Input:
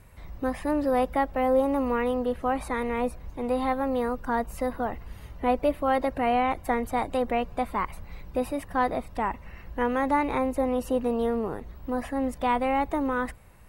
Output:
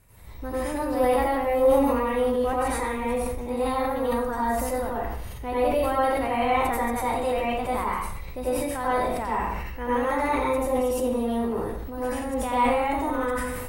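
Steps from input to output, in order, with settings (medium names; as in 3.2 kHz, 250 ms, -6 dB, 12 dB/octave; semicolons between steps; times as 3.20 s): treble shelf 5.1 kHz +9 dB; plate-style reverb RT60 0.6 s, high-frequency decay 0.95×, pre-delay 75 ms, DRR -8 dB; decay stretcher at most 26 dB/s; trim -8.5 dB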